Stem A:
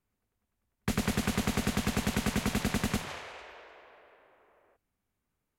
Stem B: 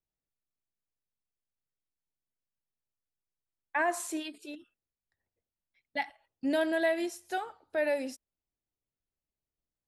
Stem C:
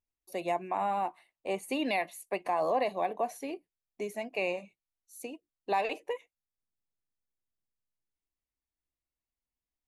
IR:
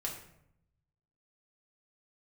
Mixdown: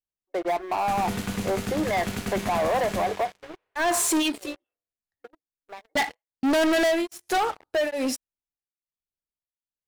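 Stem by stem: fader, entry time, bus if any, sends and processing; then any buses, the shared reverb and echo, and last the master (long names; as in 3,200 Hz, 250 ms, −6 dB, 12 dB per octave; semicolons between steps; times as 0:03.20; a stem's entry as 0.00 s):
−10.0 dB, 0.00 s, send −8.5 dB, tuned comb filter 99 Hz, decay 1 s, harmonics all, mix 80%; pitch vibrato 13 Hz 31 cents
+1.5 dB, 0.00 s, no send, tremolo along a rectified sine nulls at 1.2 Hz
0:03.23 −9 dB → 0:03.44 −17 dB, 0.00 s, no send, brick-wall band-pass 290–2,200 Hz; automatic ducking −13 dB, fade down 0.25 s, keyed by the second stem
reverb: on, RT60 0.75 s, pre-delay 4 ms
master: leveller curve on the samples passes 5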